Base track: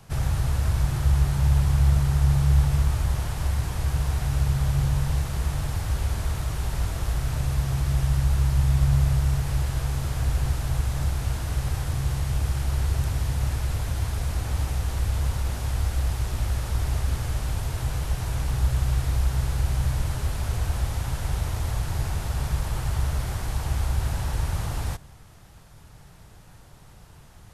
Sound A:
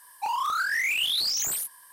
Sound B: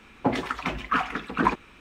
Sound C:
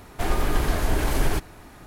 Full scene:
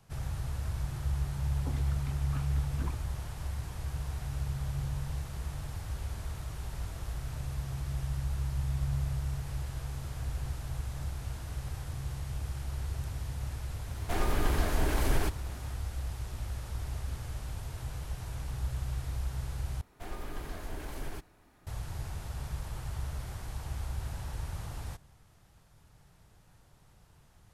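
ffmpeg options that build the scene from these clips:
ffmpeg -i bed.wav -i cue0.wav -i cue1.wav -i cue2.wav -filter_complex "[3:a]asplit=2[link_01][link_02];[0:a]volume=-11.5dB[link_03];[2:a]equalizer=frequency=1200:width=0.36:gain=-12.5[link_04];[link_03]asplit=2[link_05][link_06];[link_05]atrim=end=19.814[link_07];[link_02]atrim=end=1.86,asetpts=PTS-STARTPTS,volume=-17dB[link_08];[link_06]atrim=start=21.666[link_09];[link_04]atrim=end=1.8,asetpts=PTS-STARTPTS,volume=-13.5dB,afade=type=in:duration=0.004:curve=hsin,afade=type=out:start_time=1.796:duration=0.004:curve=hsin,adelay=1410[link_10];[link_01]atrim=end=1.86,asetpts=PTS-STARTPTS,volume=-6dB,afade=type=in:duration=0.004:curve=hsin,afade=type=out:start_time=1.856:duration=0.004:curve=hsin,adelay=13900[link_11];[link_07][link_08]acrossfade=duration=0.004:curve1=hsin:curve2=hsin[link_12];[link_12][link_09]acrossfade=duration=0.004:curve1=hsin:curve2=hsin[link_13];[link_13][link_10][link_11]amix=inputs=3:normalize=0" out.wav

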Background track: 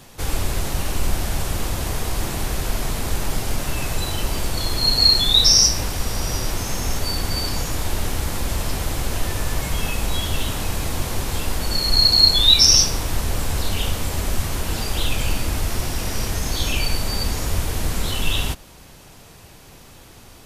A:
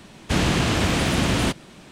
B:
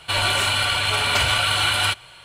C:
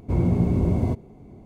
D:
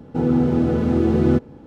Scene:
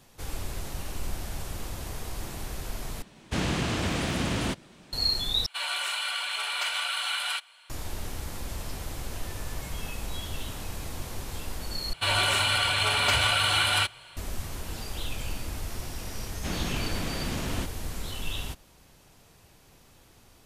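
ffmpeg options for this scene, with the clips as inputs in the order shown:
ffmpeg -i bed.wav -i cue0.wav -i cue1.wav -filter_complex "[1:a]asplit=2[link_01][link_02];[2:a]asplit=2[link_03][link_04];[0:a]volume=-12dB[link_05];[link_03]highpass=890[link_06];[link_02]aresample=32000,aresample=44100[link_07];[link_05]asplit=4[link_08][link_09][link_10][link_11];[link_08]atrim=end=3.024[link_12];[link_01]atrim=end=1.91,asetpts=PTS-STARTPTS,volume=-7.5dB[link_13];[link_09]atrim=start=4.926:end=5.464[link_14];[link_06]atrim=end=2.24,asetpts=PTS-STARTPTS,volume=-9.5dB[link_15];[link_10]atrim=start=7.696:end=11.934[link_16];[link_04]atrim=end=2.24,asetpts=PTS-STARTPTS,volume=-4dB[link_17];[link_11]atrim=start=14.166[link_18];[link_07]atrim=end=1.91,asetpts=PTS-STARTPTS,volume=-12.5dB,afade=type=in:duration=0.004:curve=hsin,afade=type=out:start_time=1.906:duration=0.004:curve=hsin,adelay=16140[link_19];[link_12][link_13]acrossfade=duration=0.004:curve1=hsin:curve2=hsin[link_20];[link_20][link_14]acrossfade=duration=0.004:curve1=hsin:curve2=hsin[link_21];[link_21][link_15]acrossfade=duration=0.004:curve1=hsin:curve2=hsin[link_22];[link_22][link_16]acrossfade=duration=0.004:curve1=hsin:curve2=hsin[link_23];[link_23][link_17]acrossfade=duration=0.004:curve1=hsin:curve2=hsin[link_24];[link_24][link_18]acrossfade=duration=0.004:curve1=hsin:curve2=hsin[link_25];[link_25][link_19]amix=inputs=2:normalize=0" out.wav

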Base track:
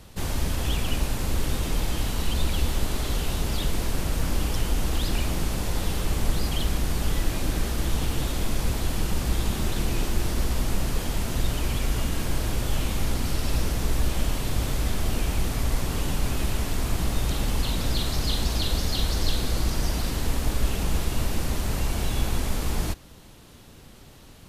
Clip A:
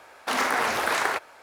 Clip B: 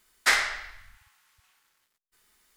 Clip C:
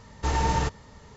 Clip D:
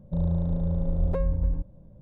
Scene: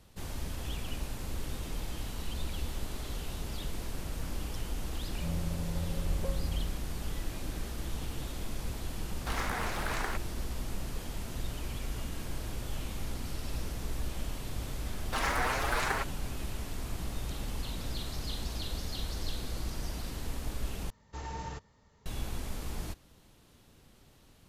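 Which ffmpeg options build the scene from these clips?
ffmpeg -i bed.wav -i cue0.wav -i cue1.wav -i cue2.wav -i cue3.wav -filter_complex "[1:a]asplit=2[link_01][link_02];[0:a]volume=-11.5dB[link_03];[link_02]asplit=2[link_04][link_05];[link_05]adelay=6.9,afreqshift=2.6[link_06];[link_04][link_06]amix=inputs=2:normalize=1[link_07];[link_03]asplit=2[link_08][link_09];[link_08]atrim=end=20.904[link_10];[3:a]atrim=end=1.16,asetpts=PTS-STARTPTS,volume=-15.5dB[link_11];[link_09]atrim=start=22.056[link_12];[4:a]atrim=end=2.01,asetpts=PTS-STARTPTS,volume=-9.5dB,afade=type=in:duration=0.004:curve=hsin,afade=type=out:start_time=2.006:duration=0.004:curve=hsin,adelay=5100[link_13];[link_01]atrim=end=1.42,asetpts=PTS-STARTPTS,volume=-11.5dB,afade=type=in:duration=0.004:curve=hsin,afade=type=out:start_time=1.416:duration=0.004:curve=hsin,adelay=8990[link_14];[link_07]atrim=end=1.42,asetpts=PTS-STARTPTS,volume=-4dB,afade=type=in:duration=0.004:curve=hsin,afade=type=out:start_time=1.416:duration=0.004:curve=hsin,adelay=14850[link_15];[link_10][link_11]acrossfade=duration=0.004:curve1=hsin:curve2=hsin[link_16];[link_16][link_12]acrossfade=duration=0.004:curve1=hsin:curve2=hsin[link_17];[link_17][link_13][link_14][link_15]amix=inputs=4:normalize=0" out.wav

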